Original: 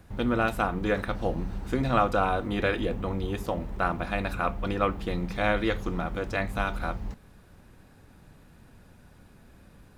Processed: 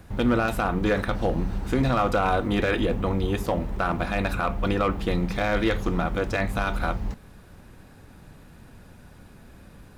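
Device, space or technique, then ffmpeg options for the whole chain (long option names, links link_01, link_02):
limiter into clipper: -af "alimiter=limit=-17.5dB:level=0:latency=1:release=34,asoftclip=type=hard:threshold=-20.5dB,volume=5.5dB"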